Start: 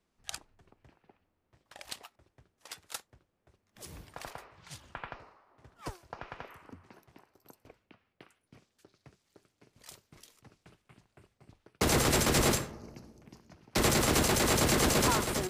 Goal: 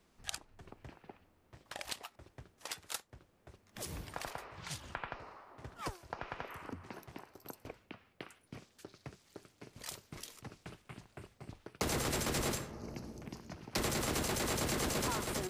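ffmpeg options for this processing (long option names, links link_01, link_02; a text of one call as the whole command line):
ffmpeg -i in.wav -af "acompressor=threshold=-51dB:ratio=2.5,volume=9dB" out.wav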